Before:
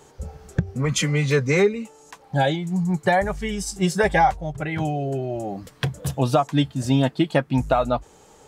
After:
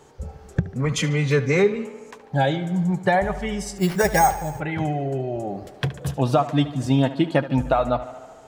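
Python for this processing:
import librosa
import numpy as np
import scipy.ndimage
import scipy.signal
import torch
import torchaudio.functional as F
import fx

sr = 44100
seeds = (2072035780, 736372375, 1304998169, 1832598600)

p1 = fx.high_shelf(x, sr, hz=4600.0, db=-6.0)
p2 = p1 + fx.echo_tape(p1, sr, ms=74, feedback_pct=78, wet_db=-13.0, lp_hz=4500.0, drive_db=12.0, wow_cents=19, dry=0)
y = fx.resample_bad(p2, sr, factor=6, down='none', up='hold', at=(3.78, 4.6))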